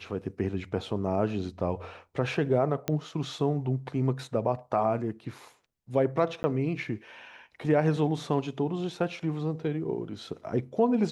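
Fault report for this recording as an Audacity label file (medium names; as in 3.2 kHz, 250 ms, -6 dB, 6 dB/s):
2.880000	2.880000	pop -15 dBFS
6.430000	6.440000	dropout 10 ms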